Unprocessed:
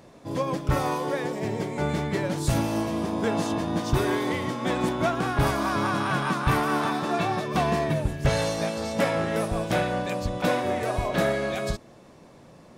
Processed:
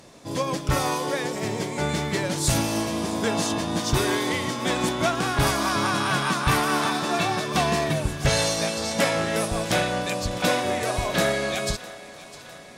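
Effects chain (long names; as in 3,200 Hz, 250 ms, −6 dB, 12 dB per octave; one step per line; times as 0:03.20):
parametric band 7,200 Hz +10.5 dB 2.9 octaves
on a send: feedback echo with a high-pass in the loop 655 ms, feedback 66%, level −17 dB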